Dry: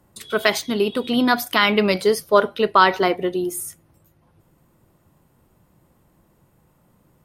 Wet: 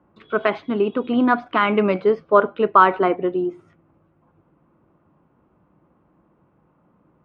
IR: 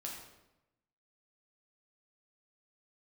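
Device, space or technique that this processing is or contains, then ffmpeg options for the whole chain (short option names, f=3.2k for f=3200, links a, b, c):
bass cabinet: -af "highpass=65,equalizer=f=79:t=q:w=4:g=-7,equalizer=f=120:t=q:w=4:g=-7,equalizer=f=300:t=q:w=4:g=4,equalizer=f=1.2k:t=q:w=4:g=4,equalizer=f=1.9k:t=q:w=4:g=-7,lowpass=f=2.3k:w=0.5412,lowpass=f=2.3k:w=1.3066"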